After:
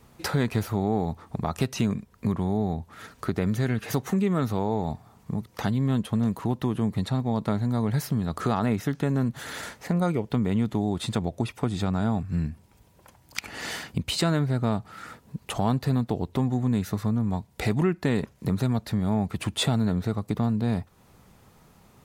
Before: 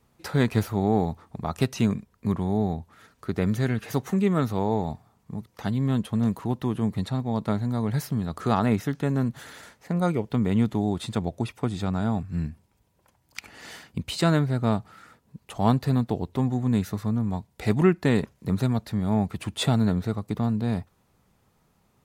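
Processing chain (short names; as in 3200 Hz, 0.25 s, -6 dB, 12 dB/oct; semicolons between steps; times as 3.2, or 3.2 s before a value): in parallel at -2 dB: limiter -17 dBFS, peak gain reduction 8.5 dB; on the sum: compressor 2:1, threshold -35 dBFS, peak gain reduction 13 dB; gain +5 dB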